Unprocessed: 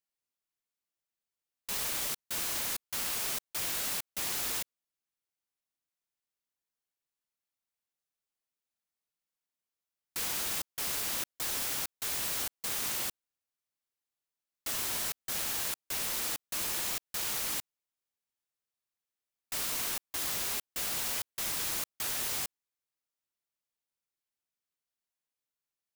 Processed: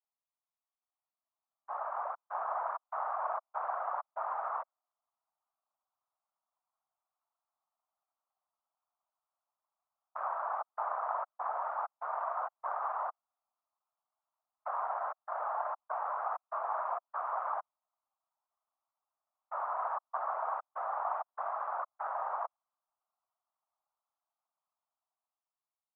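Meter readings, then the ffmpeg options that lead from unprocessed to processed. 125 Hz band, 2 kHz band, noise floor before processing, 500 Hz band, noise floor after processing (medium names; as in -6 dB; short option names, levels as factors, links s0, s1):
under -40 dB, -7.5 dB, under -85 dBFS, +6.5 dB, under -85 dBFS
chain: -af "aemphasis=mode=reproduction:type=riaa,dynaudnorm=f=620:g=5:m=3.76,afftfilt=real='hypot(re,im)*cos(2*PI*random(0))':imag='hypot(re,im)*sin(2*PI*random(1))':win_size=512:overlap=0.75,crystalizer=i=3.5:c=0,asuperpass=centerf=910:order=8:qfactor=1.4,volume=2.11"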